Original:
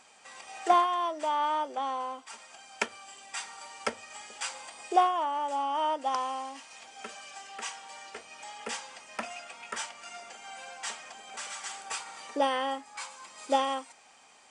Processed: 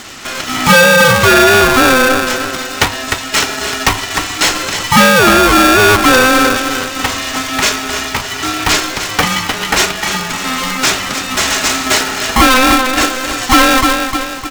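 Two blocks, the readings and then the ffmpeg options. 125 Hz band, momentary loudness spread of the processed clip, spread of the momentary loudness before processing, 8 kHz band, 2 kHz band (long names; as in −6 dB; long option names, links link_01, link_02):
can't be measured, 10 LU, 17 LU, +25.5 dB, +29.5 dB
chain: -filter_complex "[0:a]highpass=frequency=190:width=0.5412,highpass=frequency=190:width=1.3066,bandreject=frequency=60:width_type=h:width=6,bandreject=frequency=120:width_type=h:width=6,bandreject=frequency=180:width_type=h:width=6,bandreject=frequency=240:width_type=h:width=6,bandreject=frequency=300:width_type=h:width=6,bandreject=frequency=360:width_type=h:width=6,bandreject=frequency=420:width_type=h:width=6,bandreject=frequency=480:width_type=h:width=6,bandreject=frequency=540:width_type=h:width=6,asplit=2[link_01][link_02];[link_02]aecho=0:1:304|608|912|1216|1520:0.282|0.127|0.0571|0.0257|0.0116[link_03];[link_01][link_03]amix=inputs=2:normalize=0,asoftclip=type=hard:threshold=-25dB,apsyclip=30.5dB,aresample=16000,acrusher=bits=4:mix=0:aa=0.000001,aresample=44100,aeval=exprs='val(0)*sgn(sin(2*PI*520*n/s))':channel_layout=same,volume=-4dB"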